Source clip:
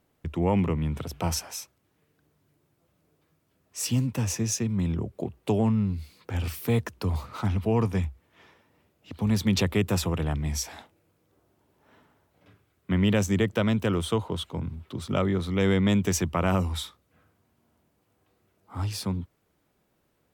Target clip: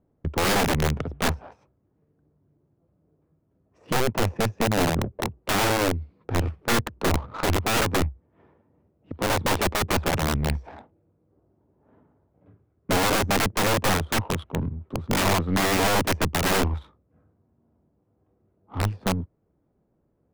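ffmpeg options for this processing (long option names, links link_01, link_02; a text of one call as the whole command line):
ffmpeg -i in.wav -af "deesser=0.85,lowshelf=frequency=460:gain=-2.5,adynamicsmooth=sensitivity=3.5:basefreq=600,aeval=exprs='(mod(15.8*val(0)+1,2)-1)/15.8':channel_layout=same,aeval=exprs='0.0668*(cos(1*acos(clip(val(0)/0.0668,-1,1)))-cos(1*PI/2))+0.0188*(cos(2*acos(clip(val(0)/0.0668,-1,1)))-cos(2*PI/2))':channel_layout=same,volume=6.5dB" out.wav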